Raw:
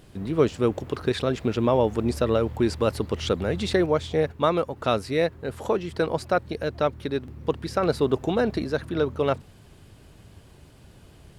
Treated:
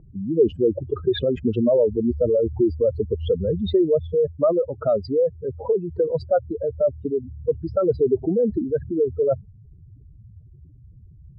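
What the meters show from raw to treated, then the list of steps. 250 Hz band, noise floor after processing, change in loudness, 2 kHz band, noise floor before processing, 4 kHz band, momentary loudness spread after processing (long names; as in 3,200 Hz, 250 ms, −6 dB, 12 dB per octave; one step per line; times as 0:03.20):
+2.0 dB, −48 dBFS, +3.0 dB, below −10 dB, −51 dBFS, can't be measured, 6 LU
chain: expanding power law on the bin magnitudes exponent 3.6
low-pass that shuts in the quiet parts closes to 700 Hz, open at −21.5 dBFS
level +4 dB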